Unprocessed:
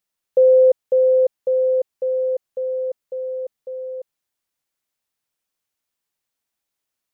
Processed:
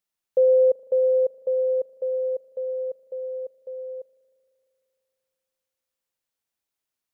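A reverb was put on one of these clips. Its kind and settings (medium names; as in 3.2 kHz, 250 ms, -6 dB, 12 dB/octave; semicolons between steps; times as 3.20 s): spring tank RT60 3 s, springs 38 ms, chirp 40 ms, DRR 15.5 dB; trim -4.5 dB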